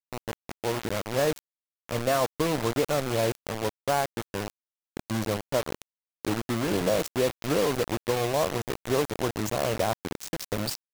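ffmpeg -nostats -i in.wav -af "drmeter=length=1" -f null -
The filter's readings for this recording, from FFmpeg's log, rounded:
Channel 1: DR: 10.1
Overall DR: 10.1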